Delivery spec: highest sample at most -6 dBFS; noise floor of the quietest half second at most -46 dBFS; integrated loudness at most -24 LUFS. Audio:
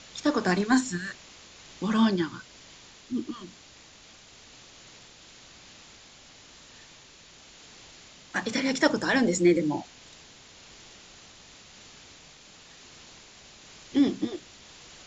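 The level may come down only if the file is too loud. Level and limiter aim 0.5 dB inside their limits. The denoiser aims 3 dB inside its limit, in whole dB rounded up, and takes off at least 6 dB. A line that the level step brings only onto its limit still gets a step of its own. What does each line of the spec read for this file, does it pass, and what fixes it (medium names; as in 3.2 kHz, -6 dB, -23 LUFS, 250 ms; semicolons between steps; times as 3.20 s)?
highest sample -7.0 dBFS: pass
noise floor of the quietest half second -52 dBFS: pass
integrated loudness -26.5 LUFS: pass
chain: none needed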